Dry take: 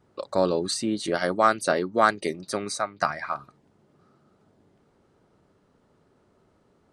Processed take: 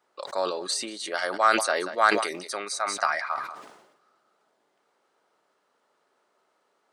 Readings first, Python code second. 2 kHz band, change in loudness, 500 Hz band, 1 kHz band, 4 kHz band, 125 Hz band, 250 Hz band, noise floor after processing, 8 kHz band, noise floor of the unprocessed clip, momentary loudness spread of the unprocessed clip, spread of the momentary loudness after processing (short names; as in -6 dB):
+3.0 dB, -0.5 dB, -3.5 dB, 0.0 dB, +2.5 dB, under -15 dB, -7.5 dB, -72 dBFS, +2.5 dB, -65 dBFS, 11 LU, 12 LU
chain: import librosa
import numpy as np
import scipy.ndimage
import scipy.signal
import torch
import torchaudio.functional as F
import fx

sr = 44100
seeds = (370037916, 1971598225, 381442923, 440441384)

p1 = scipy.signal.sosfilt(scipy.signal.butter(2, 720.0, 'highpass', fs=sr, output='sos'), x)
p2 = p1 + fx.echo_single(p1, sr, ms=186, db=-21.0, dry=0)
y = fx.sustainer(p2, sr, db_per_s=61.0)